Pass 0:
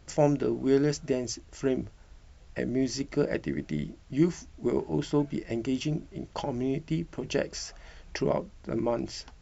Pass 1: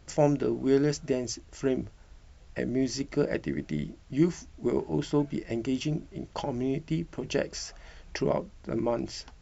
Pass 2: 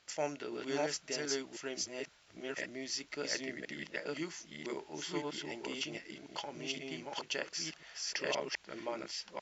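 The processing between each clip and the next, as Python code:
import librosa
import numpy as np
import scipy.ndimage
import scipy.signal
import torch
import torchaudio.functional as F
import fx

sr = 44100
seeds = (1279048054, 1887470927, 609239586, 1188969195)

y1 = x
y2 = fx.reverse_delay(y1, sr, ms=522, wet_db=0)
y2 = fx.bandpass_q(y2, sr, hz=3400.0, q=0.65)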